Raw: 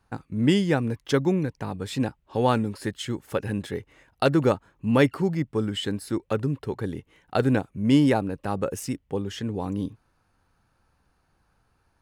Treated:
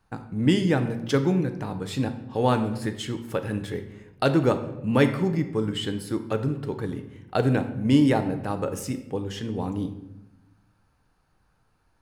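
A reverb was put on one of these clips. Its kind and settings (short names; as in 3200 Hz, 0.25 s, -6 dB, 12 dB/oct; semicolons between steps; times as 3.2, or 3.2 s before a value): shoebox room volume 360 m³, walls mixed, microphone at 0.51 m; gain -1 dB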